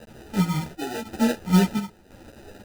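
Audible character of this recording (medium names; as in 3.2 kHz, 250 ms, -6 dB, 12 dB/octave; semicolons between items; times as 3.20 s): a quantiser's noise floor 8-bit, dither triangular; chopped level 0.95 Hz, depth 65%, duty 70%; aliases and images of a low sample rate 1.1 kHz, jitter 0%; a shimmering, thickened sound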